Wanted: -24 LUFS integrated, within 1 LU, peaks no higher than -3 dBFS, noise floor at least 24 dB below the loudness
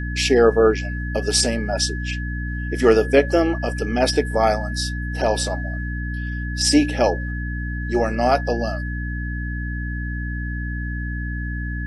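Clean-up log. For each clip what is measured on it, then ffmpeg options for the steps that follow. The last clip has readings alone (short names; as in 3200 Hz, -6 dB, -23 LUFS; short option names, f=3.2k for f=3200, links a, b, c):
hum 60 Hz; harmonics up to 300 Hz; hum level -24 dBFS; steady tone 1700 Hz; tone level -32 dBFS; loudness -21.5 LUFS; peak -2.5 dBFS; loudness target -24.0 LUFS
-> -af "bandreject=f=60:t=h:w=6,bandreject=f=120:t=h:w=6,bandreject=f=180:t=h:w=6,bandreject=f=240:t=h:w=6,bandreject=f=300:t=h:w=6"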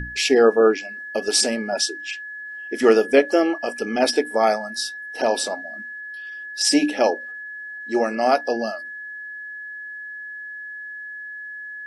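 hum none; steady tone 1700 Hz; tone level -32 dBFS
-> -af "bandreject=f=1.7k:w=30"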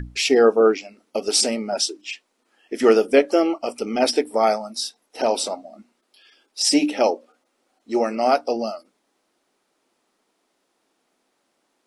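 steady tone none; loudness -20.5 LUFS; peak -3.5 dBFS; loudness target -24.0 LUFS
-> -af "volume=-3.5dB"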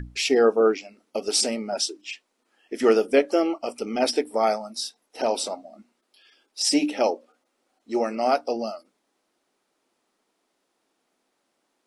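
loudness -24.0 LUFS; peak -7.0 dBFS; noise floor -75 dBFS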